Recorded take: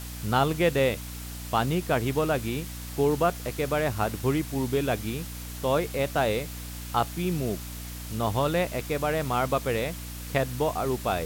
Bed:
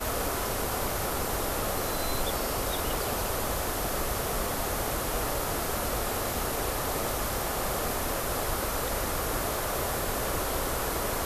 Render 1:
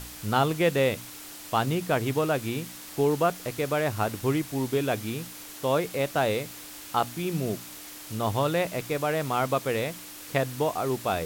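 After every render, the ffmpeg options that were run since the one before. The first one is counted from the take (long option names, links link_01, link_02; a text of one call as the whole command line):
ffmpeg -i in.wav -af "bandreject=frequency=60:width_type=h:width=4,bandreject=frequency=120:width_type=h:width=4,bandreject=frequency=180:width_type=h:width=4,bandreject=frequency=240:width_type=h:width=4" out.wav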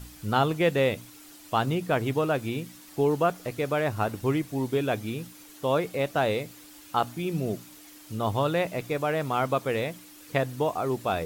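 ffmpeg -i in.wav -af "afftdn=noise_reduction=9:noise_floor=-43" out.wav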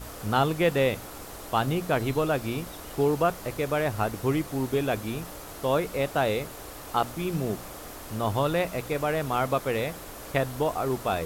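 ffmpeg -i in.wav -i bed.wav -filter_complex "[1:a]volume=-12dB[link_01];[0:a][link_01]amix=inputs=2:normalize=0" out.wav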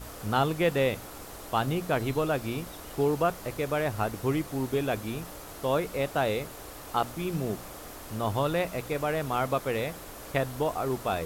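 ffmpeg -i in.wav -af "volume=-2dB" out.wav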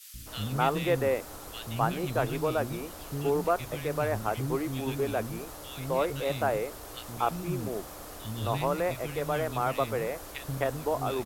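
ffmpeg -i in.wav -filter_complex "[0:a]acrossover=split=260|2300[link_01][link_02][link_03];[link_01]adelay=140[link_04];[link_02]adelay=260[link_05];[link_04][link_05][link_03]amix=inputs=3:normalize=0" out.wav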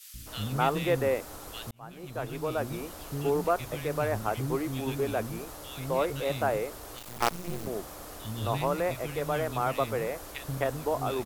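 ffmpeg -i in.wav -filter_complex "[0:a]asettb=1/sr,asplit=3[link_01][link_02][link_03];[link_01]atrim=end=6.974[link_04];[link_02]atrim=start=6.97:end=7.67,asetpts=PTS-STARTPTS,afade=type=in:duration=0.004:curve=qsin,afade=type=out:start_time=0.696:duration=0.004:curve=qsin,acrusher=bits=4:dc=4:mix=0:aa=0.000001[link_05];[link_03]atrim=start=7.666[link_06];[link_04][link_05]acrossfade=duration=0.004:curve1=hsin:curve2=qsin[link_07];[link_07][link_06]acrossfade=duration=0.004:curve1=qsin:curve2=hsin,asplit=2[link_08][link_09];[link_08]atrim=end=1.71,asetpts=PTS-STARTPTS,afade=type=out:start_time=1.706:duration=0.004:curve=hsin[link_10];[link_09]atrim=start=1.71,asetpts=PTS-STARTPTS,afade=type=in:duration=1.1[link_11];[link_10][link_11]concat=n=2:v=0:a=1" out.wav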